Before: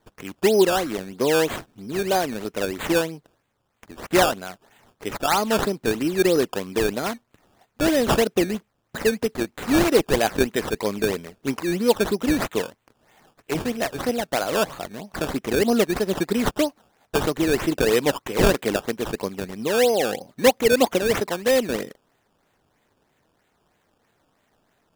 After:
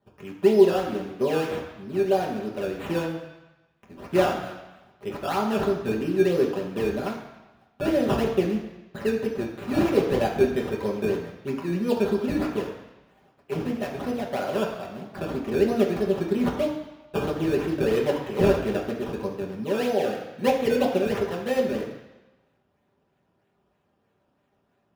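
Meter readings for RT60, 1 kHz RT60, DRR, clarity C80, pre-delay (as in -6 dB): 1.1 s, 1.1 s, -3.0 dB, 8.0 dB, 3 ms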